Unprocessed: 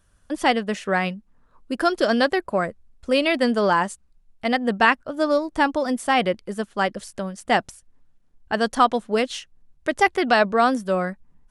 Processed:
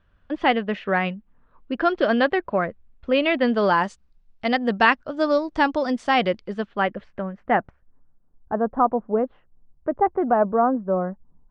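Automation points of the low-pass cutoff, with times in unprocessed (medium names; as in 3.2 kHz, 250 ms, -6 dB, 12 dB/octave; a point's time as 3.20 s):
low-pass 24 dB/octave
3.38 s 3.3 kHz
3.82 s 5.5 kHz
6.37 s 5.5 kHz
6.94 s 2.6 kHz
8.59 s 1.1 kHz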